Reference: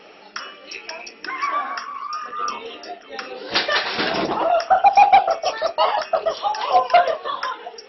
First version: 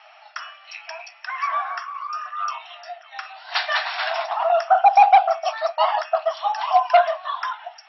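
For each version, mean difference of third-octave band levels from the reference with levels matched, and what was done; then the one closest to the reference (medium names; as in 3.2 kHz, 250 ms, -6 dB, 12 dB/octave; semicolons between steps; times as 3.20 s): 6.5 dB: brick-wall FIR high-pass 610 Hz; treble shelf 4 kHz -9.5 dB; band-stop 4.9 kHz, Q 27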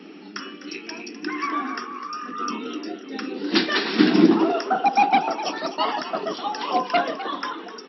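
4.5 dB: steep high-pass 160 Hz 72 dB/octave; resonant low shelf 410 Hz +11 dB, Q 3; on a send: frequency-shifting echo 253 ms, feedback 30%, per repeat +77 Hz, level -13 dB; on the sum: trim -2.5 dB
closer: second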